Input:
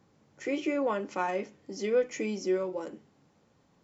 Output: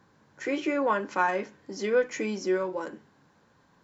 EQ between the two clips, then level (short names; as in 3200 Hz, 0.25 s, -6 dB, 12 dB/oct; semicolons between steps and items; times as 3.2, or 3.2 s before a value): thirty-one-band EQ 1000 Hz +8 dB, 1600 Hz +12 dB, 4000 Hz +4 dB; +1.5 dB